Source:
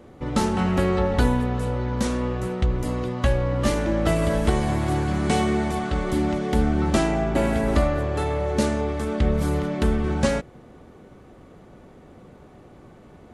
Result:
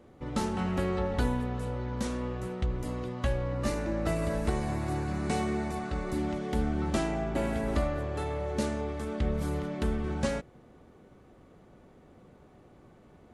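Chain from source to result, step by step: 3.54–6.18 s: band-stop 3.2 kHz, Q 6; trim -8.5 dB

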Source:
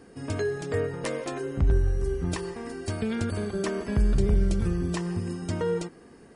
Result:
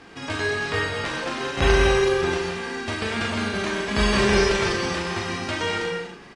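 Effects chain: formants flattened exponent 0.3; low-pass 2.8 kHz 12 dB/octave; doubling 38 ms -4.5 dB; in parallel at 0 dB: compression, threshold -36 dBFS, peak gain reduction 18.5 dB; on the sum: gated-style reverb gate 280 ms flat, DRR 1.5 dB

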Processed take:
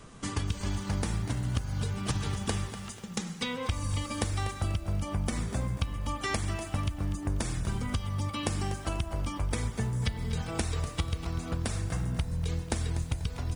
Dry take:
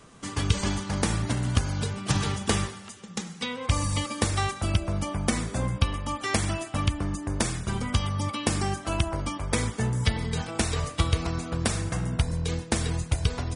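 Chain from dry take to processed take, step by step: bass shelf 97 Hz +9.5 dB; compression, threshold -28 dBFS, peak gain reduction 16 dB; bit-crushed delay 244 ms, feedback 35%, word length 8-bit, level -12.5 dB

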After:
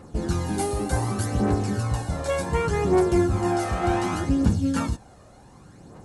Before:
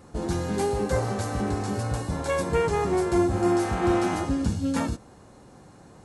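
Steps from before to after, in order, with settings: 0.46–1.26 s: graphic EQ with 31 bands 315 Hz +10 dB, 500 Hz -7 dB, 1.6 kHz -3 dB, 10 kHz +10 dB; phaser 0.67 Hz, delay 1.7 ms, feedback 47%

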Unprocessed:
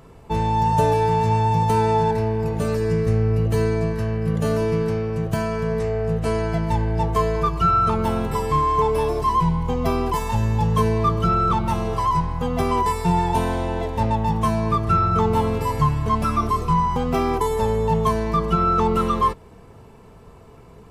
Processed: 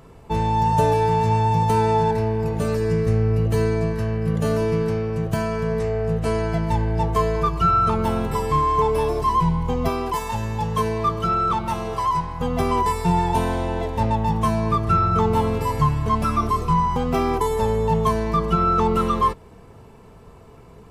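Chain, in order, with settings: 9.88–12.40 s: bass shelf 280 Hz -7.5 dB

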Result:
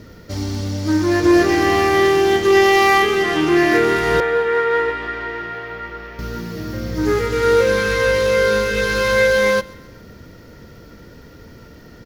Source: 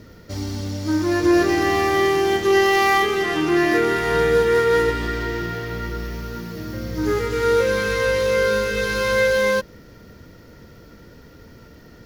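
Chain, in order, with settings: 4.20–6.19 s: three-band isolator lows -15 dB, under 490 Hz, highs -19 dB, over 3 kHz; feedback delay 133 ms, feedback 47%, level -22 dB; loudspeaker Doppler distortion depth 0.11 ms; trim +3.5 dB

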